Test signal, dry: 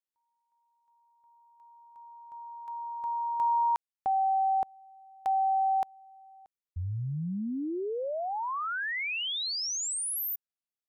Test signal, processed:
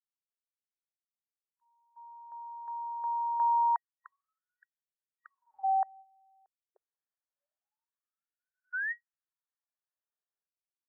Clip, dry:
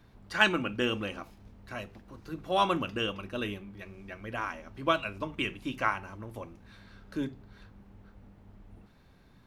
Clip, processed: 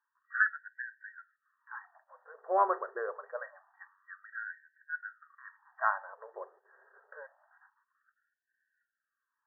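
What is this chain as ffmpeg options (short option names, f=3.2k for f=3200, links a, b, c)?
-af "agate=range=-16dB:threshold=-52dB:ratio=16:release=204:detection=peak,afftfilt=real='re*between(b*sr/4096,220,1900)':imag='im*between(b*sr/4096,220,1900)':win_size=4096:overlap=0.75,afftfilt=real='re*gte(b*sr/1024,350*pow(1500/350,0.5+0.5*sin(2*PI*0.26*pts/sr)))':imag='im*gte(b*sr/1024,350*pow(1500/350,0.5+0.5*sin(2*PI*0.26*pts/sr)))':win_size=1024:overlap=0.75"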